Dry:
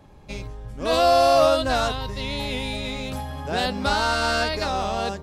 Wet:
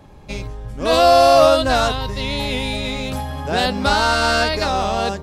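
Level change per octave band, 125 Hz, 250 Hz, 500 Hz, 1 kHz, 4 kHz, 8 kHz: +5.5, +5.5, +5.5, +5.5, +5.5, +5.5 dB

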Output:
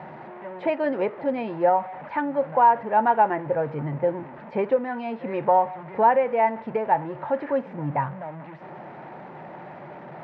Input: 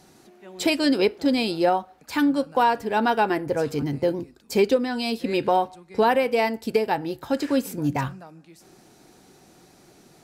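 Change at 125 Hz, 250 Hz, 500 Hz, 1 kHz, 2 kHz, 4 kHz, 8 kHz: -1.0 dB, -7.0 dB, -0.5 dB, +3.5 dB, -4.0 dB, under -20 dB, under -40 dB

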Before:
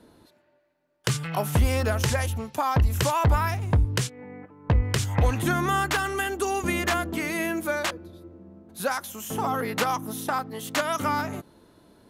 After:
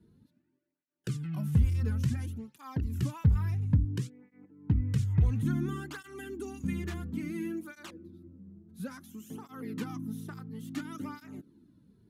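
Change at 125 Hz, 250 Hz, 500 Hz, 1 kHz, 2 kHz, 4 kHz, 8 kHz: -3.0, -4.0, -16.5, -22.5, -19.0, -19.0, -19.0 dB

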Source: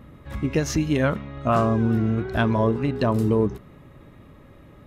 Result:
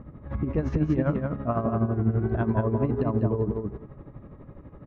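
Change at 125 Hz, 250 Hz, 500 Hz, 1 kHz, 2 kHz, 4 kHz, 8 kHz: -1.5 dB, -3.5 dB, -4.5 dB, -7.0 dB, -11.0 dB, under -20 dB, n/a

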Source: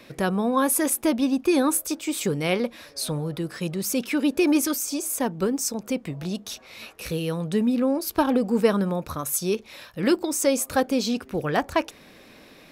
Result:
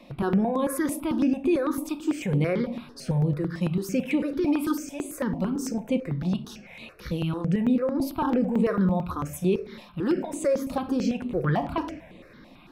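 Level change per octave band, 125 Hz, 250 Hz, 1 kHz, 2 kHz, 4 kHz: +4.5, -1.0, -3.5, -5.5, -10.0 dB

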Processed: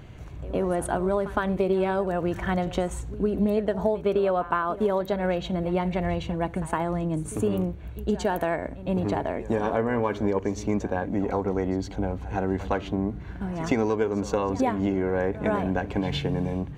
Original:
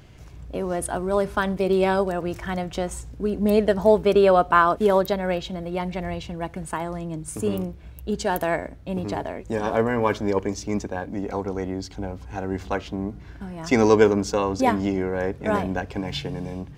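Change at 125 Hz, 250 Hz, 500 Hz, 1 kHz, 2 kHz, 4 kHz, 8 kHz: +0.5, -1.0, -3.5, -4.5, -4.5, -4.5, -5.5 dB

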